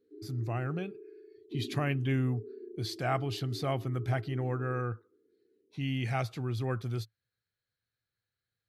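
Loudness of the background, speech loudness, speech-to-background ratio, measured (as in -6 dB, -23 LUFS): -47.0 LUFS, -34.0 LUFS, 13.0 dB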